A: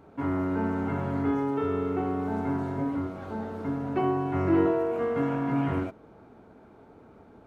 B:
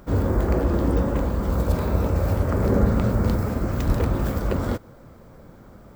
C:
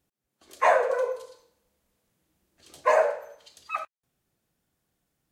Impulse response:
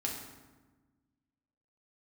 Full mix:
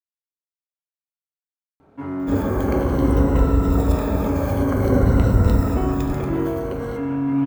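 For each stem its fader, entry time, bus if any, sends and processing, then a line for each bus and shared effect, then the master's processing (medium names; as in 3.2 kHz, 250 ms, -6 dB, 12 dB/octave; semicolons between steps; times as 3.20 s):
-5.0 dB, 1.80 s, send -6.5 dB, none
5.73 s -3 dB -> 6.42 s -11.5 dB, 2.20 s, send -5 dB, drifting ripple filter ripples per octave 2, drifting -0.52 Hz, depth 11 dB; band-stop 4.7 kHz, Q 9.8
mute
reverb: on, RT60 1.2 s, pre-delay 4 ms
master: none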